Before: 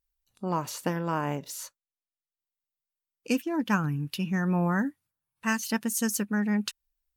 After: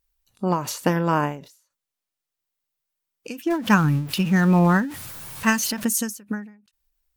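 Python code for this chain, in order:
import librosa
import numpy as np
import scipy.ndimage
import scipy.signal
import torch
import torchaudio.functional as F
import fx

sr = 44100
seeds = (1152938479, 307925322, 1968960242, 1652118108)

y = fx.zero_step(x, sr, step_db=-39.0, at=(3.5, 5.85))
y = fx.end_taper(y, sr, db_per_s=120.0)
y = y * 10.0 ** (8.5 / 20.0)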